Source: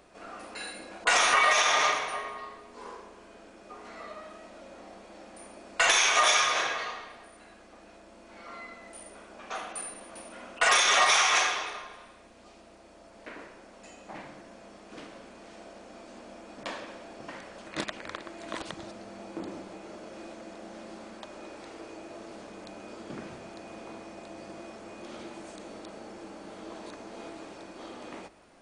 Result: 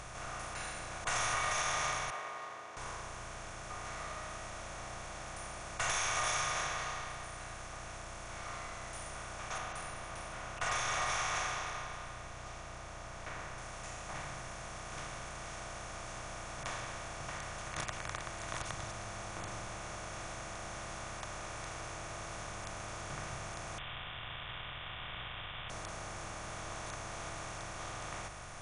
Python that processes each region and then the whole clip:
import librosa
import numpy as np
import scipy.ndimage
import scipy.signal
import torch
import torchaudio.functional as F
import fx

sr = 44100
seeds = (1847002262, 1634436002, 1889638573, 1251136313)

y = fx.chain(x, sr, fx.cvsd(bps=64000),
    fx.highpass(hz=360.0, slope=24),
    fx.spacing_loss(db_at_10k=37), at=(2.1, 2.77))
y = fx.chain(y, sr, fx.lowpass(hz=7900.0, slope=12),
    fx.high_shelf(hz=3700.0, db=-9.0), at=(9.58, 13.58))
y = fx.chain(y, sr, fx.tilt_eq(slope=-3.5),
    fx.quant_companded(bits=4),
    fx.freq_invert(carrier_hz=3500), at=(23.78, 25.7))
y = fx.bin_compress(y, sr, power=0.4)
y = fx.curve_eq(y, sr, hz=(120.0, 240.0, 890.0, 3700.0, 7400.0), db=(0, -25, -19, -24, -16))
y = F.gain(torch.from_numpy(y), 4.5).numpy()